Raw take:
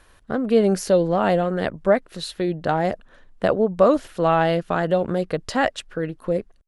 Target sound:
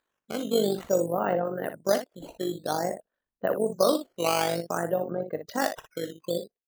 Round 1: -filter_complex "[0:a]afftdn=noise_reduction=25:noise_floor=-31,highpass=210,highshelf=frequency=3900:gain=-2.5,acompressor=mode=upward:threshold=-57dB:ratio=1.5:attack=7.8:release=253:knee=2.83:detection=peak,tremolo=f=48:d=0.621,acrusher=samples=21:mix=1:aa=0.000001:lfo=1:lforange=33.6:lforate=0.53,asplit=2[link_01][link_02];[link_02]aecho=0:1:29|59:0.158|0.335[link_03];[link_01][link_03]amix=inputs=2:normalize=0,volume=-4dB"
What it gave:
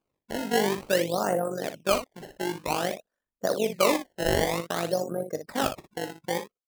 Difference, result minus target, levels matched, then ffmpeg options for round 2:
sample-and-hold swept by an LFO: distortion +12 dB
-filter_complex "[0:a]afftdn=noise_reduction=25:noise_floor=-31,highpass=210,highshelf=frequency=3900:gain=-2.5,acompressor=mode=upward:threshold=-57dB:ratio=1.5:attack=7.8:release=253:knee=2.83:detection=peak,tremolo=f=48:d=0.621,acrusher=samples=7:mix=1:aa=0.000001:lfo=1:lforange=11.2:lforate=0.53,asplit=2[link_01][link_02];[link_02]aecho=0:1:29|59:0.158|0.335[link_03];[link_01][link_03]amix=inputs=2:normalize=0,volume=-4dB"

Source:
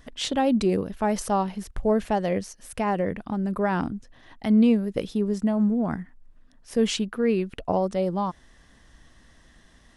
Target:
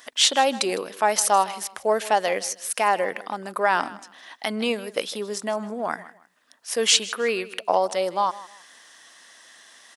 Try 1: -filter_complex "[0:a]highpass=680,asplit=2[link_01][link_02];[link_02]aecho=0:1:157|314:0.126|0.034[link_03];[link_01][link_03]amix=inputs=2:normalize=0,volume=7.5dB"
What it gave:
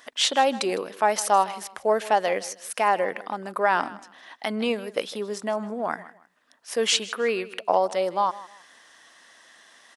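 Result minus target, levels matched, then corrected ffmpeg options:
8,000 Hz band −4.5 dB
-filter_complex "[0:a]highpass=680,highshelf=frequency=3400:gain=7.5,asplit=2[link_01][link_02];[link_02]aecho=0:1:157|314:0.126|0.034[link_03];[link_01][link_03]amix=inputs=2:normalize=0,volume=7.5dB"

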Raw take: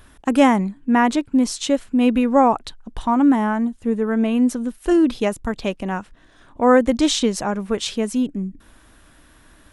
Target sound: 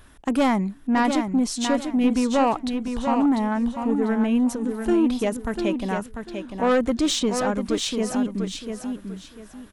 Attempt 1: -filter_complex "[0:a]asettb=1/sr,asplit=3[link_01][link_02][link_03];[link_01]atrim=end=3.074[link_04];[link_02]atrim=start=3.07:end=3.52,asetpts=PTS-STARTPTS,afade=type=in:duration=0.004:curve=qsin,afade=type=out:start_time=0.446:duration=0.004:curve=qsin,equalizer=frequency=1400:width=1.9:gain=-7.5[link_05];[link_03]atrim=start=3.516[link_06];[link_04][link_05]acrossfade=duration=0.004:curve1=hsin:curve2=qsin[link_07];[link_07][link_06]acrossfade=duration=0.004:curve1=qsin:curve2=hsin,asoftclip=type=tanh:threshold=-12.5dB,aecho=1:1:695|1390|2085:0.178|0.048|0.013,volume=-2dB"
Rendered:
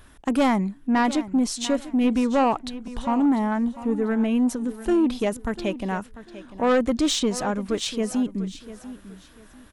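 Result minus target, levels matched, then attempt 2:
echo-to-direct −8.5 dB
-filter_complex "[0:a]asettb=1/sr,asplit=3[link_01][link_02][link_03];[link_01]atrim=end=3.074[link_04];[link_02]atrim=start=3.07:end=3.52,asetpts=PTS-STARTPTS,afade=type=in:duration=0.004:curve=qsin,afade=type=out:start_time=0.446:duration=0.004:curve=qsin,equalizer=frequency=1400:width=1.9:gain=-7.5[link_05];[link_03]atrim=start=3.516[link_06];[link_04][link_05]acrossfade=duration=0.004:curve1=hsin:curve2=qsin[link_07];[link_07][link_06]acrossfade=duration=0.004:curve1=qsin:curve2=hsin,asoftclip=type=tanh:threshold=-12.5dB,aecho=1:1:695|1390|2085:0.473|0.128|0.0345,volume=-2dB"

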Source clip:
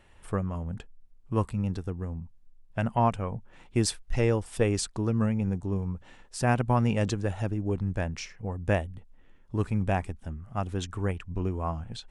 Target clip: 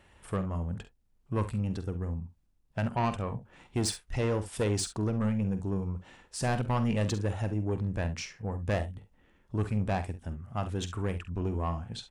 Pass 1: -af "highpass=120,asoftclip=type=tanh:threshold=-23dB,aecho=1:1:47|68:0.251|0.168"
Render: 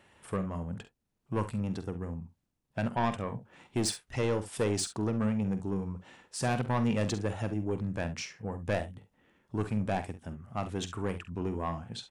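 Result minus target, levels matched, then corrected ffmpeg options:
125 Hz band −2.5 dB
-af "highpass=38,asoftclip=type=tanh:threshold=-23dB,aecho=1:1:47|68:0.251|0.168"

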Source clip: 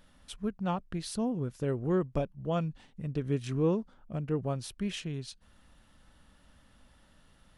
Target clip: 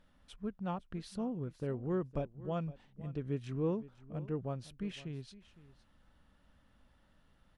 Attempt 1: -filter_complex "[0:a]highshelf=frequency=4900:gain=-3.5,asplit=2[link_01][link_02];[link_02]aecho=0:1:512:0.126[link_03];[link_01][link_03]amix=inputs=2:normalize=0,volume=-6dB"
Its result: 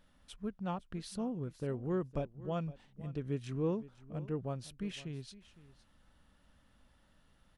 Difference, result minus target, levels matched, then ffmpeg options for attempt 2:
8,000 Hz band +5.5 dB
-filter_complex "[0:a]highshelf=frequency=4900:gain=-11.5,asplit=2[link_01][link_02];[link_02]aecho=0:1:512:0.126[link_03];[link_01][link_03]amix=inputs=2:normalize=0,volume=-6dB"

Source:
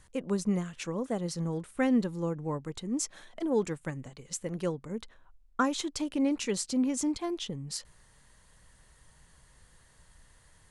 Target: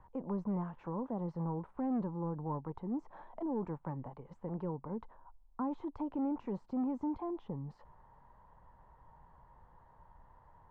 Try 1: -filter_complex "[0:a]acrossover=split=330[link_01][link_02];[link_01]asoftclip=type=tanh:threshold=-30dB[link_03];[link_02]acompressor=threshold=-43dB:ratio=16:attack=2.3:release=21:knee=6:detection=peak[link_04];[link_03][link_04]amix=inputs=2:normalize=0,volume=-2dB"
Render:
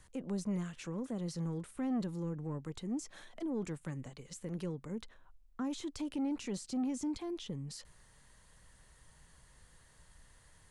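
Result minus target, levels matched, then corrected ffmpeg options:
1,000 Hz band −7.0 dB
-filter_complex "[0:a]acrossover=split=330[link_01][link_02];[link_01]asoftclip=type=tanh:threshold=-30dB[link_03];[link_02]acompressor=threshold=-43dB:ratio=16:attack=2.3:release=21:knee=6:detection=peak,lowpass=frequency=920:width_type=q:width=5.4[link_04];[link_03][link_04]amix=inputs=2:normalize=0,volume=-2dB"

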